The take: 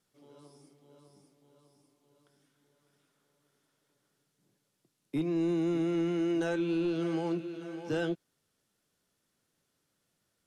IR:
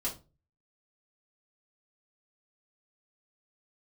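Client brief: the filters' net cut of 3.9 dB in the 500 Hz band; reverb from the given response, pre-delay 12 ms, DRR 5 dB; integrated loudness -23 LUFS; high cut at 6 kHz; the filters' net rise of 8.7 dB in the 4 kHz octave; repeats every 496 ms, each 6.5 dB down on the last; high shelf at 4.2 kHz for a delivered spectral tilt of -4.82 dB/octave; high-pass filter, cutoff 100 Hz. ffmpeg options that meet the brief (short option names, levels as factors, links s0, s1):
-filter_complex "[0:a]highpass=100,lowpass=6000,equalizer=f=500:t=o:g=-7,equalizer=f=4000:t=o:g=8,highshelf=f=4200:g=8.5,aecho=1:1:496|992|1488|1984|2480|2976:0.473|0.222|0.105|0.0491|0.0231|0.0109,asplit=2[s0][s1];[1:a]atrim=start_sample=2205,adelay=12[s2];[s1][s2]afir=irnorm=-1:irlink=0,volume=0.398[s3];[s0][s3]amix=inputs=2:normalize=0,volume=2.66"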